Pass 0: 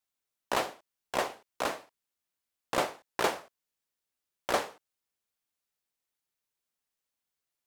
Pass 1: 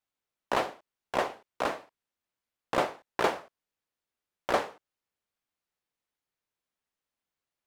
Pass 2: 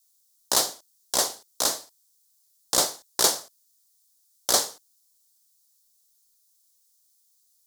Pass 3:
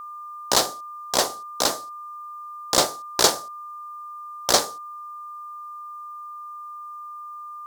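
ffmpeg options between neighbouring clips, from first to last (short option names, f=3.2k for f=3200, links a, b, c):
-af "highshelf=f=4.5k:g=-11.5,volume=2.5dB"
-af "aexciter=amount=11.5:drive=8.9:freq=4k,volume=-1.5dB"
-filter_complex "[0:a]asplit=2[a][b];[b]adynamicsmooth=sensitivity=3:basefreq=1.2k,volume=3dB[c];[a][c]amix=inputs=2:normalize=0,aeval=exprs='val(0)+0.0224*sin(2*PI*1200*n/s)':c=same,volume=-1.5dB"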